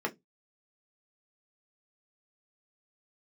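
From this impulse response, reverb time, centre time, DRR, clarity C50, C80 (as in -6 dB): 0.15 s, 8 ms, 1.0 dB, 22.5 dB, 33.5 dB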